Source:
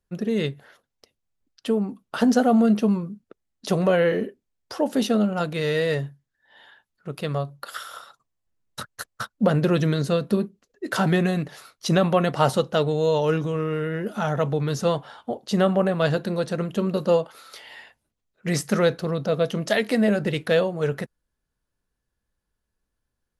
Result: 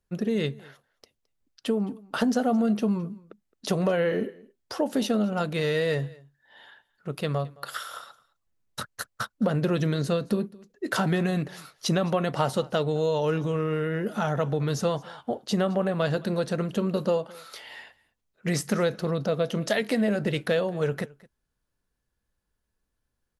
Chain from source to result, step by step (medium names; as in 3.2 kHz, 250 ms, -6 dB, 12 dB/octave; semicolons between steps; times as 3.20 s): compression 3:1, threshold -22 dBFS, peak gain reduction 7 dB; delay 216 ms -23 dB